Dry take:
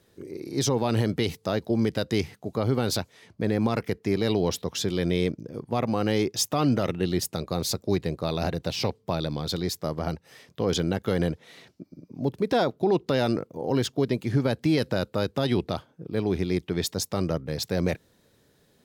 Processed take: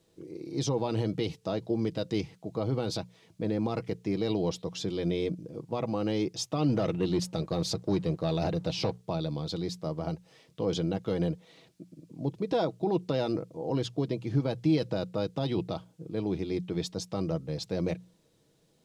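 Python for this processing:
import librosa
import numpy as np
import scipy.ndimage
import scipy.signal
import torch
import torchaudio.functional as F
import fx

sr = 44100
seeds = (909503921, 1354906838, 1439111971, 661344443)

y = fx.peak_eq(x, sr, hz=1700.0, db=-8.5, octaves=0.83)
y = fx.hum_notches(y, sr, base_hz=60, count=3)
y = y + 0.43 * np.pad(y, (int(6.2 * sr / 1000.0), 0))[:len(y)]
y = fx.leveller(y, sr, passes=1, at=(6.69, 9.03))
y = fx.dmg_noise_colour(y, sr, seeds[0], colour='violet', level_db=-57.0)
y = fx.air_absorb(y, sr, metres=80.0)
y = y * 10.0 ** (-4.5 / 20.0)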